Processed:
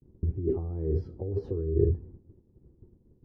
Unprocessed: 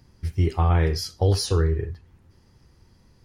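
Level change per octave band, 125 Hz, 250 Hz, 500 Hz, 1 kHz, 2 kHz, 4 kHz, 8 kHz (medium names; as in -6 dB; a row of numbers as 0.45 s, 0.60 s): -8.5 dB, -3.5 dB, -2.5 dB, under -20 dB, under -30 dB, under -35 dB, under -40 dB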